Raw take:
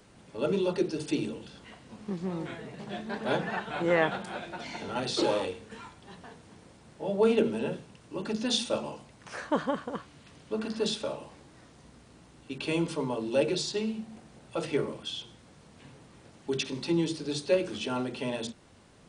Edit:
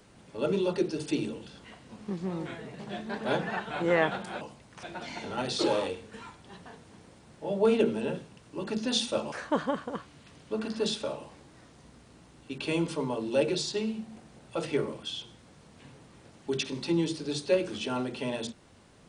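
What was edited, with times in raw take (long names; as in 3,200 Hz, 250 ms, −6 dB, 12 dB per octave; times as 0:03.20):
0:08.90–0:09.32: move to 0:04.41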